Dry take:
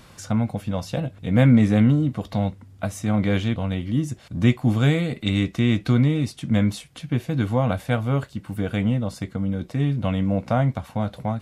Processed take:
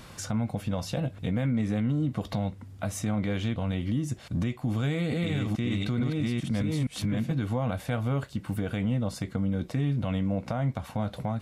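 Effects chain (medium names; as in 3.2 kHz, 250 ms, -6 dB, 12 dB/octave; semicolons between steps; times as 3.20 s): 4.68–7.34 s: chunks repeated in reverse 438 ms, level -0.5 dB; compression 3:1, threshold -26 dBFS, peak gain reduction 11.5 dB; peak limiter -21.5 dBFS, peak gain reduction 7 dB; trim +1.5 dB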